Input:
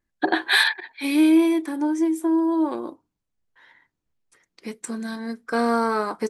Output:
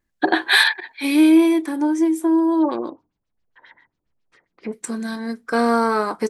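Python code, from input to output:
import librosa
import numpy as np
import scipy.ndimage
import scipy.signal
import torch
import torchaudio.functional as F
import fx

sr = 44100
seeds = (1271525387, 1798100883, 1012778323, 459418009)

y = fx.filter_lfo_lowpass(x, sr, shape='sine', hz=7.4, low_hz=570.0, high_hz=5600.0, q=1.7, at=(2.59, 4.72), fade=0.02)
y = y * librosa.db_to_amplitude(3.5)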